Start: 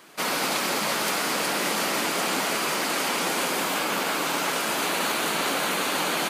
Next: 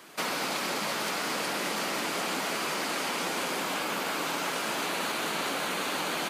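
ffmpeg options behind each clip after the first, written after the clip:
-filter_complex "[0:a]acrossover=split=110|7200[a][b][c];[a]acompressor=threshold=-59dB:ratio=4[d];[b]acompressor=threshold=-29dB:ratio=4[e];[c]acompressor=threshold=-45dB:ratio=4[f];[d][e][f]amix=inputs=3:normalize=0"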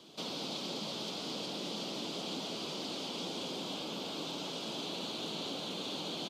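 -filter_complex "[0:a]asplit=2[a][b];[b]alimiter=level_in=5.5dB:limit=-24dB:level=0:latency=1,volume=-5.5dB,volume=1.5dB[c];[a][c]amix=inputs=2:normalize=0,firequalizer=gain_entry='entry(150,0);entry(1800,-23);entry(3300,1);entry(10000,-19)':delay=0.05:min_phase=1,volume=-6dB"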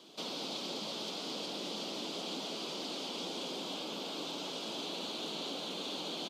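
-af "highpass=210"

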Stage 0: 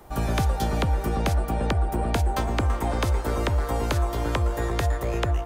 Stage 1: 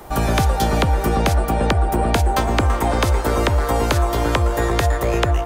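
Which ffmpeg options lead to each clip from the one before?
-filter_complex "[0:a]lowshelf=f=230:g=-4,asplit=2[a][b];[b]alimiter=limit=-22dB:level=0:latency=1:release=243,volume=0dB[c];[a][c]amix=inputs=2:normalize=0,volume=5dB"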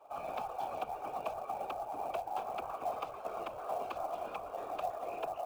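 -filter_complex "[0:a]asplit=3[a][b][c];[a]bandpass=f=730:t=q:w=8,volume=0dB[d];[b]bandpass=f=1.09k:t=q:w=8,volume=-6dB[e];[c]bandpass=f=2.44k:t=q:w=8,volume=-9dB[f];[d][e][f]amix=inputs=3:normalize=0,afftfilt=real='hypot(re,im)*cos(2*PI*random(0))':imag='hypot(re,im)*sin(2*PI*random(1))':win_size=512:overlap=0.75,acrusher=bits=6:mode=log:mix=0:aa=0.000001,volume=-4dB"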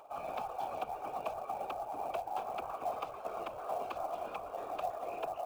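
-af "acompressor=mode=upward:threshold=-52dB:ratio=2.5"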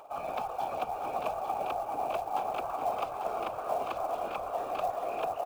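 -af "aecho=1:1:422|844:0.335|0.501,volume=4.5dB"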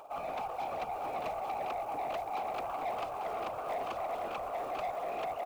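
-af "asoftclip=type=tanh:threshold=-31dB"

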